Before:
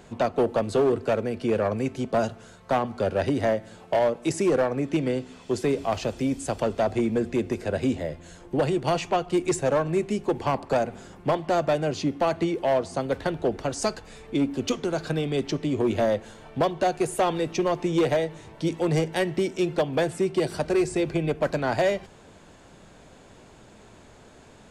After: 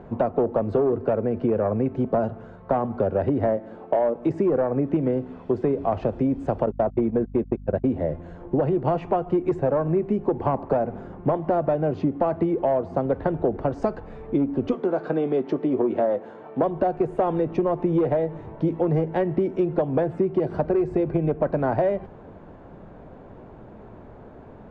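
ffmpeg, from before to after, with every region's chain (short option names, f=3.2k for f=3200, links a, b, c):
-filter_complex "[0:a]asettb=1/sr,asplit=3[a][b][c];[a]atrim=end=3.574[d];[b]atrim=start=3.57:end=4.16,asetpts=PTS-STARTPTS,afade=t=in:d=0.004:c=qsin,afade=t=out:st=0.586:d=0.004:c=qsin,lowshelf=f=190:t=q:w=1.5:g=-8.5,asoftclip=type=hard:threshold=-17dB[e];[c]atrim=start=4.156[f];[d][e]acrossfade=d=0.004:c1=hsin:c2=qsin[g];[g][f]acrossfade=d=0.004:c1=qsin:c2=hsin,asettb=1/sr,asplit=3[h][i][j];[h]atrim=end=6.664[k];[i]atrim=start=6.66:end=7.88,asetpts=PTS-STARTPTS,afade=t=in:d=0.004:c=qsin,afade=t=out:st=1.216:d=0.004:c=qsin,agate=range=-51dB:threshold=-27dB:ratio=16:release=100:detection=peak,aeval=exprs='val(0)+0.00562*(sin(2*PI*50*n/s)+sin(2*PI*2*50*n/s)/2+sin(2*PI*3*50*n/s)/3+sin(2*PI*4*50*n/s)/4+sin(2*PI*5*50*n/s)/5)':c=same[l];[j]atrim=start=7.876[m];[k][l]acrossfade=d=0.004:c1=hsin:c2=qsin[n];[n][m]acrossfade=d=0.004:c1=qsin:c2=hsin,asettb=1/sr,asplit=3[o][p][q];[o]atrim=end=14.744[r];[p]atrim=start=14.74:end=16.63,asetpts=PTS-STARTPTS,afade=t=in:d=0.004:c=qsin,afade=t=out:st=1.886:d=0.004:c=qsin,highpass=250,asplit=2[s][t];[t]adelay=16,volume=-12.5dB[u];[s][u]amix=inputs=2:normalize=0,atrim=end_sample=83349[v];[q]atrim=start=16.626[w];[r][v]acrossfade=d=0.004:c1=hsin:c2=qsin[x];[x][w]acrossfade=d=0.004:c1=qsin:c2=hsin,lowpass=1k,acompressor=threshold=-26dB:ratio=6,volume=7.5dB"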